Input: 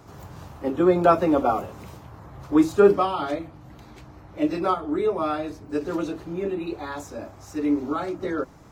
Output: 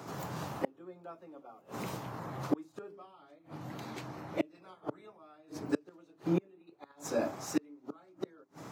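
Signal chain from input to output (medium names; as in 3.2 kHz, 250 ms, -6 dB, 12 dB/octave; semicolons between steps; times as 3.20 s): 4.54–5.16 s: spectral peaks clipped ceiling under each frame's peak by 15 dB; hum notches 50/100/150/200/250/300/350/400 Hz; inverted gate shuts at -22 dBFS, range -35 dB; high-pass 130 Hz 24 dB/octave; trim +4.5 dB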